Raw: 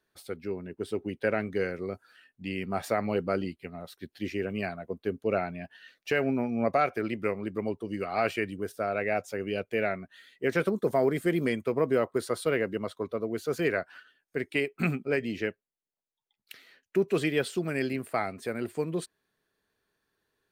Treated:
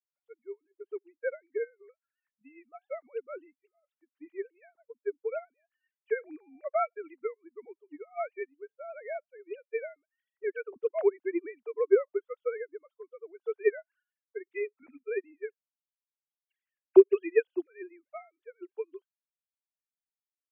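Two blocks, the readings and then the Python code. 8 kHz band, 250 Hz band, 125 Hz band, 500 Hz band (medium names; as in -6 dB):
under -30 dB, -6.5 dB, under -40 dB, -0.5 dB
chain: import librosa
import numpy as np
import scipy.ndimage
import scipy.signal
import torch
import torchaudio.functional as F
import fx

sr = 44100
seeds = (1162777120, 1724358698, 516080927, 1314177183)

y = fx.sine_speech(x, sr)
y = fx.upward_expand(y, sr, threshold_db=-41.0, expansion=2.5)
y = y * 10.0 ** (7.0 / 20.0)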